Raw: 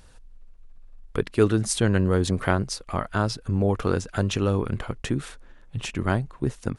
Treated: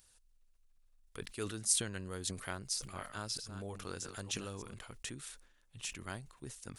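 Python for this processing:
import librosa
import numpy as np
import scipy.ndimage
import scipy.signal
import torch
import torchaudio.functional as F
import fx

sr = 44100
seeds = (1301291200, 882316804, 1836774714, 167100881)

y = fx.reverse_delay(x, sr, ms=312, wet_db=-9.5, at=(2.44, 4.74))
y = librosa.effects.preemphasis(y, coef=0.9, zi=[0.0])
y = fx.sustainer(y, sr, db_per_s=96.0)
y = y * 10.0 ** (-3.0 / 20.0)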